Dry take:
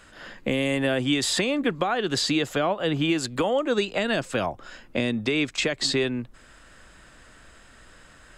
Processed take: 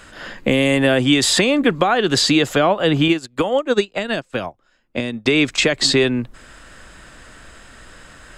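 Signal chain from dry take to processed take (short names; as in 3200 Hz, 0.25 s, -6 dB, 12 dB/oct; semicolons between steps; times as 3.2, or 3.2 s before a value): 3.08–5.26 upward expander 2.5:1, over -37 dBFS; gain +8.5 dB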